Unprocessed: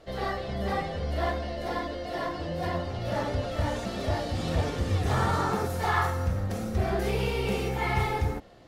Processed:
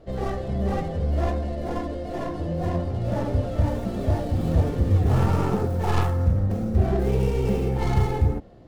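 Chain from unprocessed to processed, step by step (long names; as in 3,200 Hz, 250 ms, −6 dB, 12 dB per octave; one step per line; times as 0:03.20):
stylus tracing distortion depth 0.3 ms
tilt shelving filter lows +8 dB, about 750 Hz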